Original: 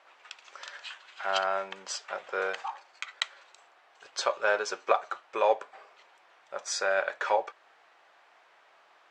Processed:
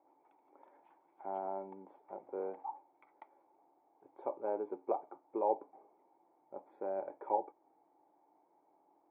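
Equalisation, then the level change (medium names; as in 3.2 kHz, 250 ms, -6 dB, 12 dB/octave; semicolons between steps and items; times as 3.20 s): cascade formant filter u; bass shelf 170 Hz +4.5 dB; +8.0 dB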